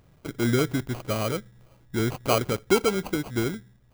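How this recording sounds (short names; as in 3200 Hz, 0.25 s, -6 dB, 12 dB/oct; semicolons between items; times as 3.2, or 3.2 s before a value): aliases and images of a low sample rate 1800 Hz, jitter 0%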